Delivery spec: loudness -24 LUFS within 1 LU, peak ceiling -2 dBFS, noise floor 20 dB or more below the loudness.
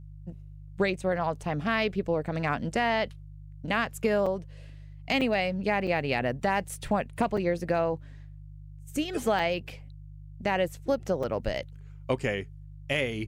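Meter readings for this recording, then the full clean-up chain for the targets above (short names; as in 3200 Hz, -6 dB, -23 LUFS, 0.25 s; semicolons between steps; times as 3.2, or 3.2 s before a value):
dropouts 7; longest dropout 4.9 ms; hum 50 Hz; harmonics up to 150 Hz; hum level -42 dBFS; loudness -29.0 LUFS; peak -14.0 dBFS; loudness target -24.0 LUFS
-> interpolate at 4.26/5.21/5.87/6.69/7.37/9.39/11.23, 4.9 ms; de-hum 50 Hz, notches 3; gain +5 dB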